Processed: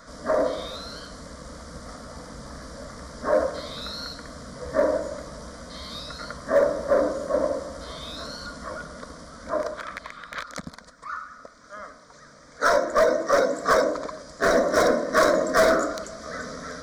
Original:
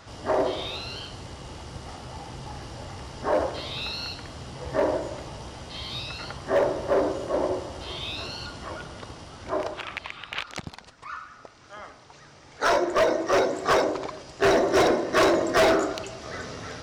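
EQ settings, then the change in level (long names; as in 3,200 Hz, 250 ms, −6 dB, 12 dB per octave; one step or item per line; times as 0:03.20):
phaser with its sweep stopped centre 550 Hz, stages 8
+4.0 dB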